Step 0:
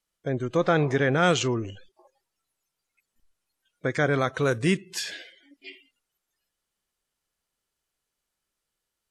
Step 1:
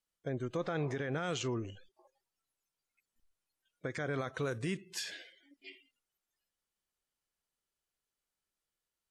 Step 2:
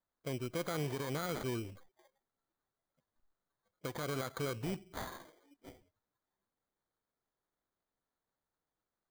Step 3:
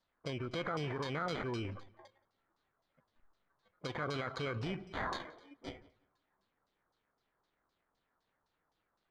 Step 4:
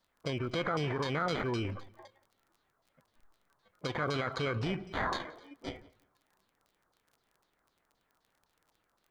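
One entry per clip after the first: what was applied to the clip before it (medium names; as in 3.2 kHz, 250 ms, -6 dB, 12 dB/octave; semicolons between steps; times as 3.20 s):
peak limiter -19 dBFS, peak gain reduction 9.5 dB; trim -8 dB
sample-rate reducer 2.7 kHz, jitter 0%; trim -2 dB
peak limiter -39.5 dBFS, peak gain reduction 10.5 dB; LFO low-pass saw down 3.9 Hz 980–5200 Hz; filtered feedback delay 174 ms, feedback 24%, low-pass 3.8 kHz, level -21.5 dB; trim +7.5 dB
crackle 26 per s -57 dBFS; trim +5 dB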